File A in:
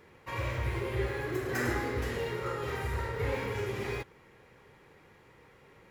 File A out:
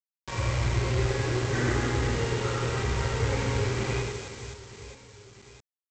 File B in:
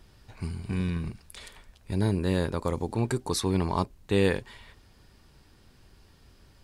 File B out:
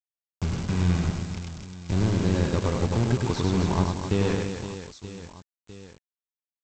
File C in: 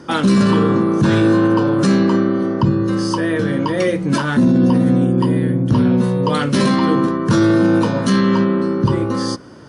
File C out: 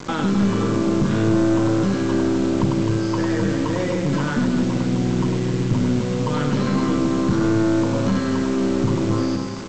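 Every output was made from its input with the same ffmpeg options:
-filter_complex "[0:a]acompressor=threshold=-26dB:ratio=3,aresample=16000,acrusher=bits=5:mix=0:aa=0.000001,aresample=44100,bass=frequency=250:gain=5,treble=frequency=4000:gain=6,bandreject=frequency=1800:width=22,asplit=2[link_01][link_02];[link_02]aecho=0:1:100|260|516|925.6|1581:0.631|0.398|0.251|0.158|0.1[link_03];[link_01][link_03]amix=inputs=2:normalize=0,acrossover=split=2900[link_04][link_05];[link_05]acompressor=threshold=-42dB:ratio=4:attack=1:release=60[link_06];[link_04][link_06]amix=inputs=2:normalize=0,aeval=exprs='(tanh(4.47*val(0)+0.45)-tanh(0.45))/4.47':channel_layout=same,volume=3dB"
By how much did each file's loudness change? +6.0, +3.0, −5.0 LU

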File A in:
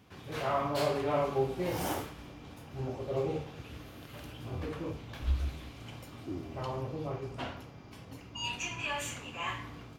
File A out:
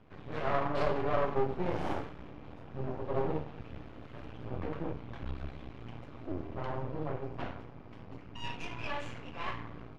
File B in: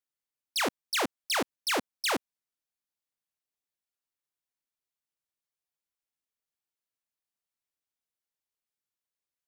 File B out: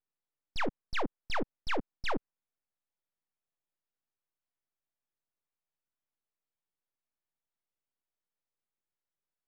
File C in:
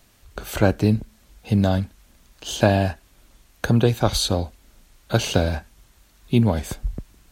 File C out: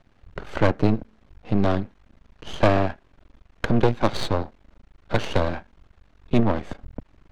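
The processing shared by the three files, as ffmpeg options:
-filter_complex "[0:a]acrossover=split=140[link_01][link_02];[link_01]acompressor=threshold=-40dB:ratio=6[link_03];[link_03][link_02]amix=inputs=2:normalize=0,aeval=exprs='max(val(0),0)':channel_layout=same,adynamicsmooth=sensitivity=1:basefreq=2200,volume=5dB"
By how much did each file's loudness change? −1.5, −6.5, −2.0 LU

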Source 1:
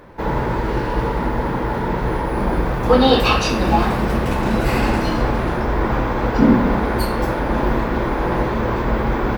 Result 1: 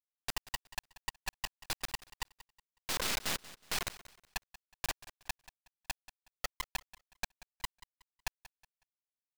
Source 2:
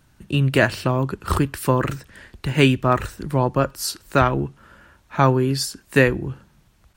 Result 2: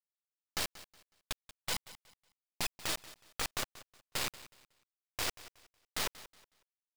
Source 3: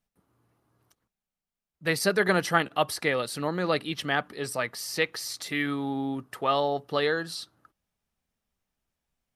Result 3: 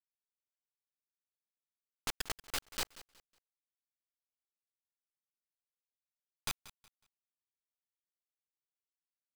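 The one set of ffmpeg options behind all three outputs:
-af "highpass=frequency=550:width=0.5412,highpass=frequency=550:width=1.3066,afftfilt=real='re*gte(hypot(re,im),0.562)':imag='im*gte(hypot(re,im),0.562)':win_size=1024:overlap=0.75,lowpass=3500,equalizer=frequency=1900:width_type=o:width=1.5:gain=-8,acompressor=threshold=-31dB:ratio=8,aresample=11025,aeval=exprs='(mod(84.1*val(0)+1,2)-1)/84.1':channel_layout=same,aresample=44100,acrusher=bits=4:dc=4:mix=0:aa=0.000001,aecho=1:1:184|368|552:0.133|0.0373|0.0105,volume=11dB"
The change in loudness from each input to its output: −21.5, −17.5, −13.0 LU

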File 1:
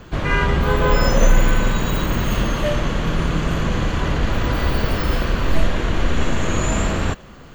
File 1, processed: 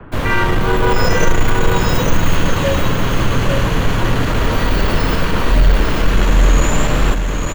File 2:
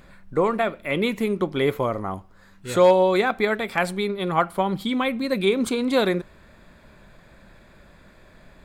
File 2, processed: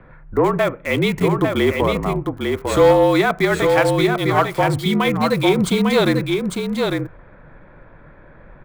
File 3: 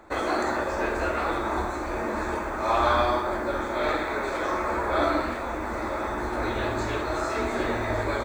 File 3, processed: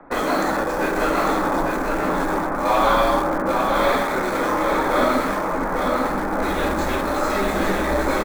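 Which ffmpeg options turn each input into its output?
-filter_complex "[0:a]equalizer=frequency=12000:width=3.6:gain=-10.5,acrossover=split=240|1400|2100[link_01][link_02][link_03][link_04];[link_04]acrusher=bits=6:mix=0:aa=0.000001[link_05];[link_01][link_02][link_03][link_05]amix=inputs=4:normalize=0,afreqshift=-43,asoftclip=type=tanh:threshold=-11.5dB,aecho=1:1:850:0.596,volume=5.5dB"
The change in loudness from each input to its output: +4.0, +5.0, +6.0 LU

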